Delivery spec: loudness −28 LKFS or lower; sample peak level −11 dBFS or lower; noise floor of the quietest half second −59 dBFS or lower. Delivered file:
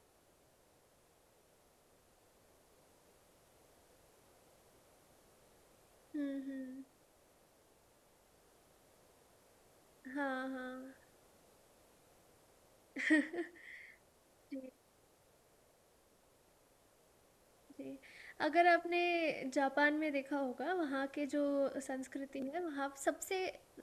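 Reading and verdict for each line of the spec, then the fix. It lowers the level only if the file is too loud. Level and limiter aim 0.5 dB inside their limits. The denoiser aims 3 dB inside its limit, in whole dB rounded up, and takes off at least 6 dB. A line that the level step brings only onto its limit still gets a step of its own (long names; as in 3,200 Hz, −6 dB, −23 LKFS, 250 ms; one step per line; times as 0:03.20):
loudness −37.5 LKFS: in spec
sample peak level −19.5 dBFS: in spec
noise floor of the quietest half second −70 dBFS: in spec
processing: no processing needed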